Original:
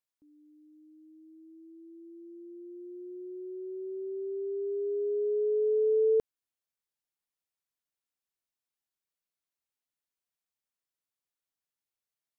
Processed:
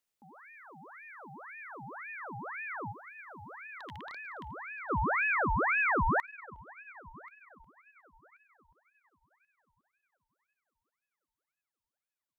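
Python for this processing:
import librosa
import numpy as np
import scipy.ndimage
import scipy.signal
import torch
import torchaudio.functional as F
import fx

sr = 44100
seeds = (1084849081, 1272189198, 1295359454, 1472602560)

y = fx.rattle_buzz(x, sr, strikes_db=-49.0, level_db=-39.0)
y = fx.rider(y, sr, range_db=5, speed_s=2.0)
y = fx.band_shelf(y, sr, hz=510.0, db=-13.0, octaves=1.7, at=(2.91, 4.89), fade=0.02)
y = fx.echo_heads(y, sr, ms=361, heads='first and third', feedback_pct=42, wet_db=-23.5)
y = fx.ring_lfo(y, sr, carrier_hz=1300.0, swing_pct=65, hz=1.9)
y = F.gain(torch.from_numpy(y), 3.5).numpy()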